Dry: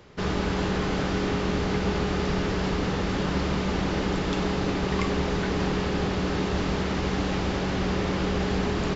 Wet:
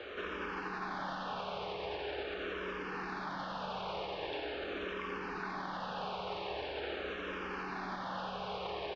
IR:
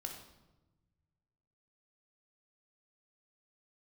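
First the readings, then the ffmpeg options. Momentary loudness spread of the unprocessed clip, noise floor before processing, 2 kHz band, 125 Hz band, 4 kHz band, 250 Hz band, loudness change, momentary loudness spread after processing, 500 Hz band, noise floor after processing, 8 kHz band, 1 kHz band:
1 LU, −28 dBFS, −8.5 dB, −24.0 dB, −10.5 dB, −20.0 dB, −13.0 dB, 1 LU, −12.0 dB, −42 dBFS, can't be measured, −7.5 dB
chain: -filter_complex "[0:a]asplit=2[link_01][link_02];[link_02]aecho=0:1:485:0.473[link_03];[link_01][link_03]amix=inputs=2:normalize=0,acontrast=73,alimiter=level_in=5.5dB:limit=-24dB:level=0:latency=1:release=331,volume=-5.5dB,lowpass=frequency=5800:width=0.5412,lowpass=frequency=5800:width=1.3066,acrossover=split=420 4100:gain=0.1 1 0.1[link_04][link_05][link_06];[link_04][link_05][link_06]amix=inputs=3:normalize=0,bandreject=frequency=2000:width=6.3,asplit=2[link_07][link_08];[link_08]aecho=0:1:86:0.473[link_09];[link_07][link_09]amix=inputs=2:normalize=0,asplit=2[link_10][link_11];[link_11]afreqshift=-0.43[link_12];[link_10][link_12]amix=inputs=2:normalize=1,volume=6.5dB"

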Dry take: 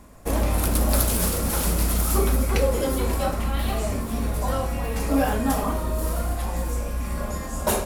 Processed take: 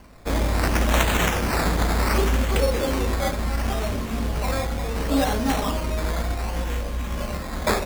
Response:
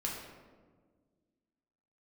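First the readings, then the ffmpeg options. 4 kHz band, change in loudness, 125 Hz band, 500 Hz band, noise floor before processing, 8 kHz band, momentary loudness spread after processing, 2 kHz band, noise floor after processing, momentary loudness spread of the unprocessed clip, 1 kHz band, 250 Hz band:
+4.0 dB, +0.5 dB, 0.0 dB, +0.5 dB, −31 dBFS, −4.5 dB, 7 LU, +6.5 dB, −31 dBFS, 7 LU, +2.0 dB, +0.5 dB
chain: -af "highshelf=frequency=10000:gain=6.5,acrusher=samples=12:mix=1:aa=0.000001:lfo=1:lforange=7.2:lforate=0.69"

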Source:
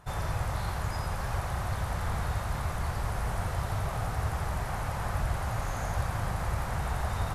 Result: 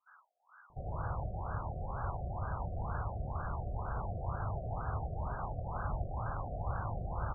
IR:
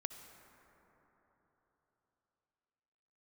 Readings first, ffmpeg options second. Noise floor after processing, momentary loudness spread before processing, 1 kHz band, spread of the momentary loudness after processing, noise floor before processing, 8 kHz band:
−65 dBFS, 1 LU, −5.5 dB, 2 LU, −35 dBFS, below −35 dB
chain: -filter_complex "[0:a]acrossover=split=1900[link_01][link_02];[link_01]adelay=700[link_03];[link_03][link_02]amix=inputs=2:normalize=0,crystalizer=i=8:c=0[link_04];[1:a]atrim=start_sample=2205,afade=type=out:start_time=0.22:duration=0.01,atrim=end_sample=10143[link_05];[link_04][link_05]afir=irnorm=-1:irlink=0,afftfilt=real='re*lt(b*sr/1024,740*pow(1700/740,0.5+0.5*sin(2*PI*2.1*pts/sr)))':imag='im*lt(b*sr/1024,740*pow(1700/740,0.5+0.5*sin(2*PI*2.1*pts/sr)))':win_size=1024:overlap=0.75,volume=-4dB"

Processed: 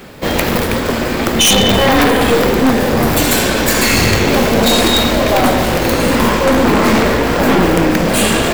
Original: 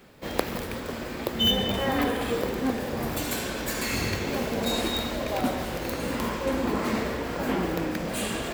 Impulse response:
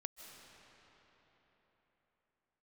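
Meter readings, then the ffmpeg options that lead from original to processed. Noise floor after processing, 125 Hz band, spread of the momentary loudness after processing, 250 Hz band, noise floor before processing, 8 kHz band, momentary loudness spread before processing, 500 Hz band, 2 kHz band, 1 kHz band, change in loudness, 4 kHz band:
−17 dBFS, +16.5 dB, 5 LU, +15.5 dB, −35 dBFS, +19.0 dB, 6 LU, +16.0 dB, +17.0 dB, +16.5 dB, +16.0 dB, +14.0 dB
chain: -af "aeval=exprs='0.596*(cos(1*acos(clip(val(0)/0.596,-1,1)))-cos(1*PI/2))+0.266*(cos(4*acos(clip(val(0)/0.596,-1,1)))-cos(4*PI/2))':channel_layout=same,aeval=exprs='0.631*sin(PI/2*5.01*val(0)/0.631)':channel_layout=same"

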